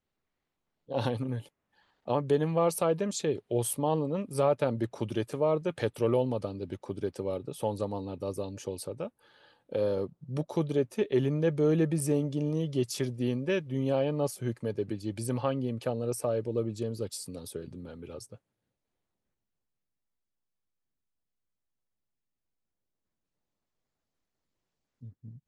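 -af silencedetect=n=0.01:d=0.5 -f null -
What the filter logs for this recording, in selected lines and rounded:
silence_start: 0.00
silence_end: 0.90 | silence_duration: 0.90
silence_start: 1.46
silence_end: 2.08 | silence_duration: 0.62
silence_start: 9.08
silence_end: 9.72 | silence_duration: 0.64
silence_start: 18.35
silence_end: 25.03 | silence_duration: 6.68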